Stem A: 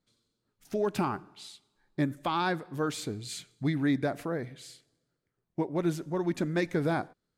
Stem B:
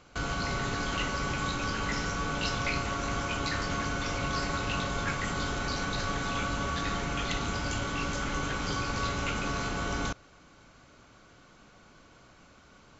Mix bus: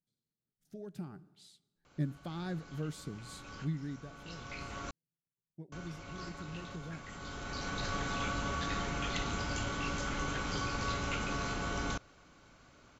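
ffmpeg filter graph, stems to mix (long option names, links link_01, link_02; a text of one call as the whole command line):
ffmpeg -i stem1.wav -i stem2.wav -filter_complex "[0:a]equalizer=frequency=160:width_type=o:width=0.67:gain=12,equalizer=frequency=1000:width_type=o:width=0.67:gain=-12,equalizer=frequency=2500:width_type=o:width=0.67:gain=-7,volume=-11dB,afade=type=in:start_time=1.07:duration=0.27:silence=0.446684,afade=type=out:start_time=3.35:duration=0.74:silence=0.266073,asplit=2[link_01][link_02];[1:a]adelay=1850,volume=-4dB,asplit=3[link_03][link_04][link_05];[link_03]atrim=end=4.91,asetpts=PTS-STARTPTS,afade=type=out:start_time=4.906:duration=0.004:curve=hsin[link_06];[link_04]atrim=start=4.91:end=5.72,asetpts=PTS-STARTPTS,volume=0[link_07];[link_05]atrim=start=5.72,asetpts=PTS-STARTPTS,afade=type=in:duration=0.004:curve=hsin[link_08];[link_06][link_07][link_08]concat=n=3:v=0:a=1[link_09];[link_02]apad=whole_len=654804[link_10];[link_09][link_10]sidechaincompress=threshold=-52dB:ratio=12:attack=5.2:release=998[link_11];[link_01][link_11]amix=inputs=2:normalize=0" out.wav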